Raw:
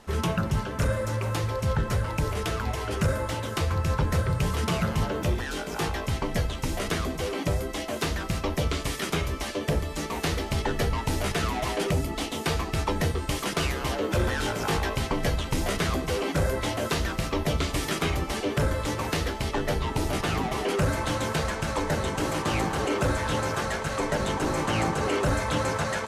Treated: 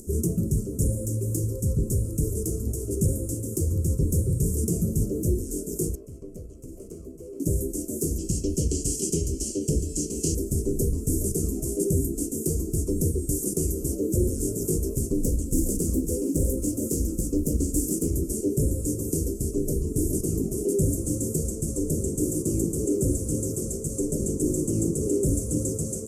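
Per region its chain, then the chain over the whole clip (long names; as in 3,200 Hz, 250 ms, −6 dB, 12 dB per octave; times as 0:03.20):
0:05.95–0:07.40: three-way crossover with the lows and the highs turned down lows −13 dB, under 530 Hz, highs −21 dB, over 3,000 Hz + tube saturation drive 27 dB, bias 0.5
0:08.18–0:10.35: low-pass filter 5,300 Hz + high shelf with overshoot 2,200 Hz +11 dB, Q 3
0:15.17–0:18.12: comb filter 3.8 ms, depth 40% + highs frequency-modulated by the lows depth 0.38 ms
whole clip: elliptic band-stop filter 380–7,500 Hz, stop band 40 dB; bass and treble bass −5 dB, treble +4 dB; upward compression, threshold −45 dBFS; level +7 dB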